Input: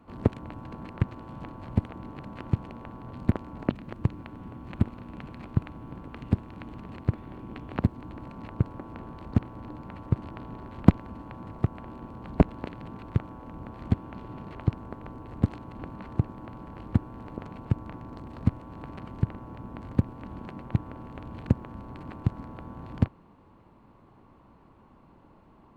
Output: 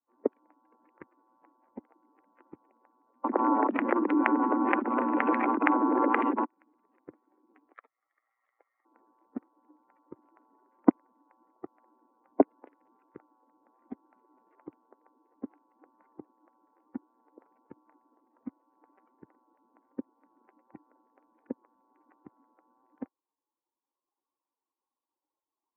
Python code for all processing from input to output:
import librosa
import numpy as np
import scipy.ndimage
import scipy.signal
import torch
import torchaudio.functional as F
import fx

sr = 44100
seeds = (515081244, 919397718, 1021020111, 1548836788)

y = fx.chain(x, sr, fx.steep_highpass(hz=200.0, slope=96),
    fx.env_flatten(amount_pct=100), at=(3.24, 6.45))
y = fx.chain(y, sr, fx.lower_of_two(delay_ms=0.56),
    fx.highpass(hz=810.0, slope=12),
    fx.peak_eq(hz=1500.0, db=-9.5, octaves=0.21), at=(7.73, 8.85))
y = fx.bin_expand(y, sr, power=2.0)
y = scipy.signal.sosfilt(scipy.signal.ellip(3, 1.0, 40, [280.0, 2100.0], 'bandpass', fs=sr, output='sos'), y)
y = F.gain(torch.from_numpy(y), 5.0).numpy()